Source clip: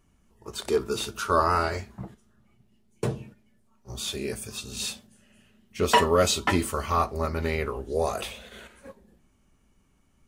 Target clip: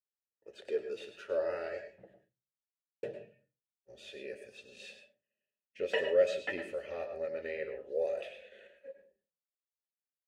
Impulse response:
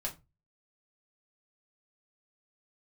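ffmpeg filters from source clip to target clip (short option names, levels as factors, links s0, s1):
-filter_complex "[0:a]asplit=3[s0][s1][s2];[s0]bandpass=f=530:t=q:w=8,volume=1[s3];[s1]bandpass=f=1840:t=q:w=8,volume=0.501[s4];[s2]bandpass=f=2480:t=q:w=8,volume=0.355[s5];[s3][s4][s5]amix=inputs=3:normalize=0,agate=range=0.0224:threshold=0.001:ratio=3:detection=peak,asplit=2[s6][s7];[1:a]atrim=start_sample=2205,adelay=102[s8];[s7][s8]afir=irnorm=-1:irlink=0,volume=0.355[s9];[s6][s9]amix=inputs=2:normalize=0"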